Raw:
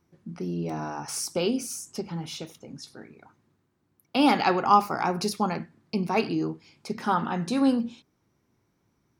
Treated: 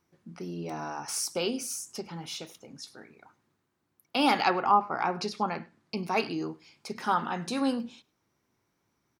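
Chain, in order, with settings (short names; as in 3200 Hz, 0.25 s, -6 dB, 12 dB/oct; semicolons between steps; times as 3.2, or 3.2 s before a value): 4.48–5.97 treble ducked by the level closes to 1100 Hz, closed at -17.5 dBFS; low shelf 410 Hz -9 dB; outdoor echo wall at 18 m, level -25 dB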